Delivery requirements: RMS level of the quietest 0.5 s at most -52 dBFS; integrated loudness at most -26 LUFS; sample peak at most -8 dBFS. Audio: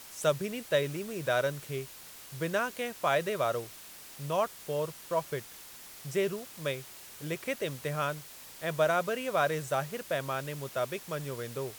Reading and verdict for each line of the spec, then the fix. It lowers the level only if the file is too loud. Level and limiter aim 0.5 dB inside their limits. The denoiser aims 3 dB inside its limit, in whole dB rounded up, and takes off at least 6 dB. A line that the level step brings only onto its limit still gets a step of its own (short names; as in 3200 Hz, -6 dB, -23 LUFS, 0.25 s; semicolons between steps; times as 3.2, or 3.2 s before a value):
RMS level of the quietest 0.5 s -49 dBFS: fail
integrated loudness -32.5 LUFS: OK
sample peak -14.5 dBFS: OK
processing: denoiser 6 dB, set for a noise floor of -49 dBFS